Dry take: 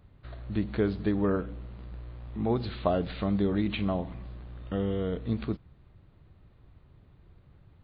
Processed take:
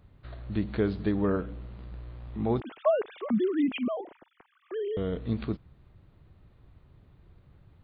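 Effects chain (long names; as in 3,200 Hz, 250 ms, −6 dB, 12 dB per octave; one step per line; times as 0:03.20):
0:02.60–0:04.97: three sine waves on the formant tracks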